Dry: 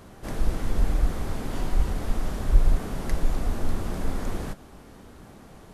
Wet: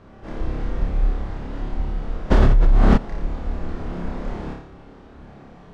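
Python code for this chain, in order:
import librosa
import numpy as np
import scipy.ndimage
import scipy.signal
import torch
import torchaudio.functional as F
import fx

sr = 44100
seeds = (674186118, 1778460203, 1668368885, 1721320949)

p1 = fx.high_shelf(x, sr, hz=4400.0, db=-7.0)
p2 = fx.rider(p1, sr, range_db=5, speed_s=2.0)
p3 = fx.air_absorb(p2, sr, metres=130.0)
p4 = p3 + fx.room_flutter(p3, sr, wall_m=4.9, rt60_s=0.65, dry=0)
p5 = fx.env_flatten(p4, sr, amount_pct=100, at=(2.3, 2.96), fade=0.02)
y = p5 * librosa.db_to_amplitude(-3.5)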